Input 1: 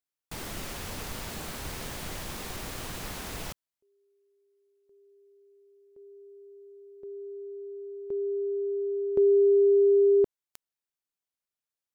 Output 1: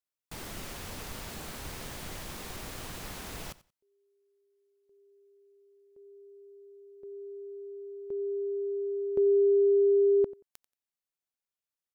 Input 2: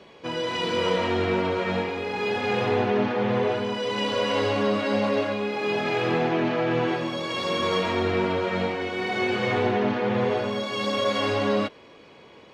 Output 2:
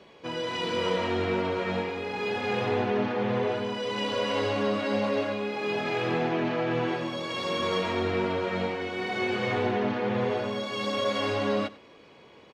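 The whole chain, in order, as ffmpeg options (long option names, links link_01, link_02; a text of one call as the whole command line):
ffmpeg -i in.wav -af "aecho=1:1:90|180:0.106|0.0201,volume=-3.5dB" out.wav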